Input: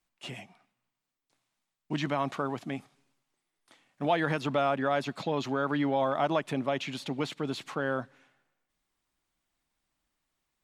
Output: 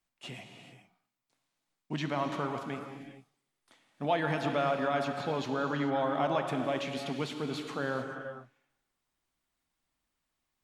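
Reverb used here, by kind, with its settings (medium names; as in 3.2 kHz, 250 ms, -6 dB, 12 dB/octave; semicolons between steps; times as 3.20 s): gated-style reverb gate 460 ms flat, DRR 4.5 dB; trim -3 dB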